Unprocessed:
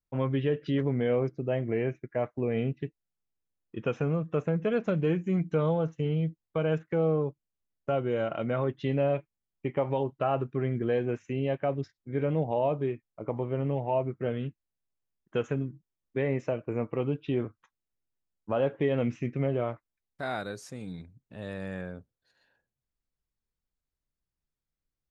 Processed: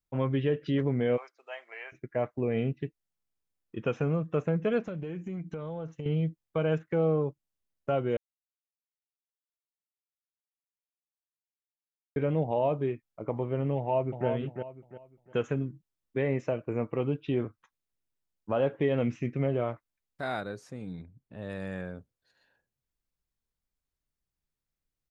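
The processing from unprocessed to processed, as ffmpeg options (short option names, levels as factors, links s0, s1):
-filter_complex "[0:a]asplit=3[s0][s1][s2];[s0]afade=t=out:st=1.16:d=0.02[s3];[s1]highpass=f=860:w=0.5412,highpass=f=860:w=1.3066,afade=t=in:st=1.16:d=0.02,afade=t=out:st=1.92:d=0.02[s4];[s2]afade=t=in:st=1.92:d=0.02[s5];[s3][s4][s5]amix=inputs=3:normalize=0,asettb=1/sr,asplit=3[s6][s7][s8];[s6]atrim=end=4.854[s9];[s7]atrim=start=4.85:end=6.06,asetpts=PTS-STARTPTS,afade=t=in:d=0.004:c=qsin,afade=t=out:st=1.206:d=0.004:c=qsin,acompressor=threshold=0.0224:ratio=10:attack=3.2:release=140:knee=1:detection=peak[s10];[s8]atrim=start=6.056[s11];[s9][s10]acrossfade=d=0.004:c1=hsin:c2=qsin[s12];[s12][s11]acrossfade=d=0.004:c1=qsin:c2=hsin,asplit=2[s13][s14];[s14]afade=t=in:st=13.77:d=0.01,afade=t=out:st=14.27:d=0.01,aecho=0:1:350|700|1050|1400:0.501187|0.150356|0.0451069|0.0135321[s15];[s13][s15]amix=inputs=2:normalize=0,asettb=1/sr,asplit=3[s16][s17][s18];[s16]atrim=end=20.404[s19];[s17]atrim=start=20.4:end=21.5,asetpts=PTS-STARTPTS,afade=t=in:d=0.004:c=qsin,afade=t=out:st=1.096:d=0.004:c=qsin,highshelf=f=3100:g=-10.5[s20];[s18]atrim=start=21.496[s21];[s19][s20]acrossfade=d=0.004:c1=hsin:c2=qsin[s22];[s22][s21]acrossfade=d=0.004:c1=qsin:c2=hsin,asplit=3[s23][s24][s25];[s23]atrim=end=8.17,asetpts=PTS-STARTPTS,afade=t=out:st=8.166:d=0.004:c=hsin[s26];[s24]atrim=start=8.17:end=12.16,asetpts=PTS-STARTPTS,volume=0[s27];[s25]atrim=start=12.16,asetpts=PTS-STARTPTS,afade=t=in:d=0.004:c=hsin[s28];[s26][s27][s28]concat=n=3:v=0:a=1"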